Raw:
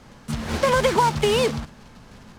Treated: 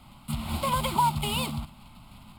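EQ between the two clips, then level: high shelf 6100 Hz +10 dB; dynamic EQ 2100 Hz, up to -5 dB, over -36 dBFS, Q 0.74; fixed phaser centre 1700 Hz, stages 6; -2.0 dB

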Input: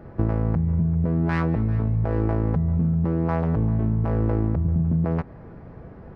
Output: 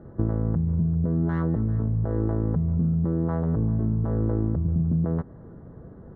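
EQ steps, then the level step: running mean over 18 samples; low shelf 87 Hz -5 dB; bell 790 Hz -6.5 dB 1 oct; 0.0 dB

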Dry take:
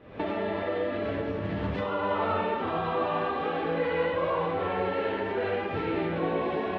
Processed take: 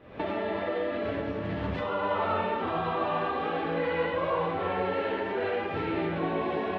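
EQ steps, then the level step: notches 50/100/150/200/250/300/350/400/450/500 Hz; 0.0 dB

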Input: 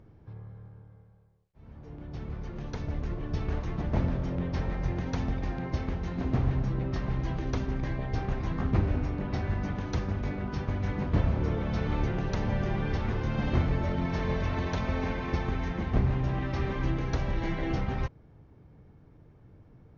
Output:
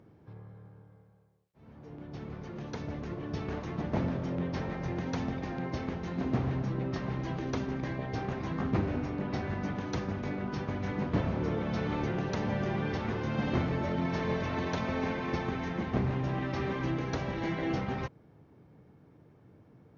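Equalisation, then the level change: Bessel high-pass 210 Hz, order 2; low shelf 270 Hz +5 dB; 0.0 dB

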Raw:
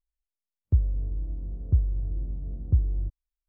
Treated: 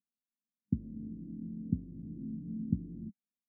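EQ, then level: Butterworth band-pass 220 Hz, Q 2.8; +13.0 dB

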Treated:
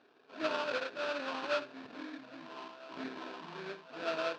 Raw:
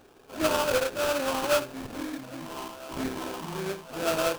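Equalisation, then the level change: speaker cabinet 350–4000 Hz, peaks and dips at 360 Hz -6 dB, 530 Hz -8 dB, 820 Hz -8 dB, 1200 Hz -5 dB, 2100 Hz -5 dB, 3100 Hz -6 dB; -3.0 dB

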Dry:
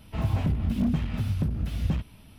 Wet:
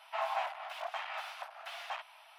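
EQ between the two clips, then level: steep high-pass 670 Hz 72 dB/oct; LPF 1400 Hz 6 dB/oct; +9.0 dB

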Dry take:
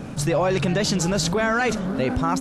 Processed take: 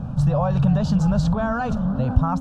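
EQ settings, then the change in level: tone controls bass +11 dB, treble -13 dB; high shelf 5800 Hz -8 dB; fixed phaser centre 870 Hz, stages 4; 0.0 dB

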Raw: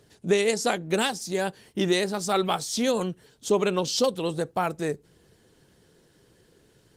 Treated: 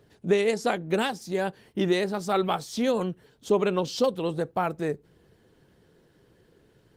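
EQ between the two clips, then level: bell 8000 Hz -10.5 dB 2 oct; 0.0 dB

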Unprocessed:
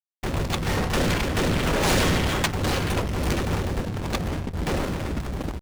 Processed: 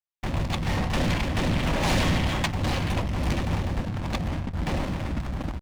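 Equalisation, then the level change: bell 420 Hz -10 dB 0.55 oct; dynamic EQ 1400 Hz, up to -6 dB, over -43 dBFS, Q 2.8; high shelf 6000 Hz -11.5 dB; 0.0 dB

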